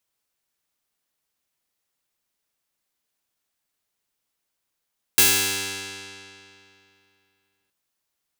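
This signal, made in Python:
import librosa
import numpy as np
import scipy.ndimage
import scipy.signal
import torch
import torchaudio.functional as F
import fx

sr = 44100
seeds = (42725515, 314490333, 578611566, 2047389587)

y = fx.pluck(sr, length_s=2.52, note=43, decay_s=2.73, pick=0.16, brightness='bright')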